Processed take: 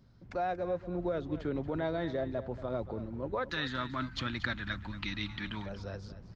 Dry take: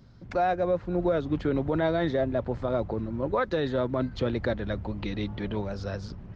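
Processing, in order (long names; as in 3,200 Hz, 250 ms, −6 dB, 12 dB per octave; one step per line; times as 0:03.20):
0:03.49–0:05.66: drawn EQ curve 300 Hz 0 dB, 450 Hz −16 dB, 1,300 Hz +11 dB
single-tap delay 232 ms −14 dB
level −8 dB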